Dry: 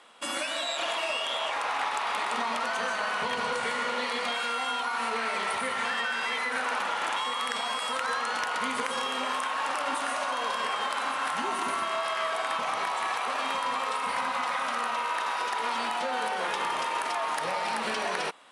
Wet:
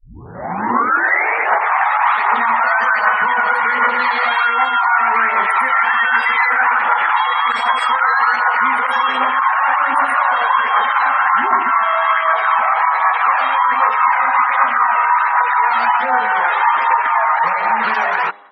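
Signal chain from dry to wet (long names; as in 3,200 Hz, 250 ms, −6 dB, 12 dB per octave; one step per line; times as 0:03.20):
turntable start at the beginning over 1.92 s
brickwall limiter −24.5 dBFS, peak gain reduction 9 dB
automatic gain control gain up to 16 dB
flat-topped bell 1,300 Hz +10.5 dB
hum removal 101.1 Hz, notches 11
phase shifter 1.3 Hz, delay 1.6 ms, feedback 35%
gate on every frequency bin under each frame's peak −25 dB strong
level −6.5 dB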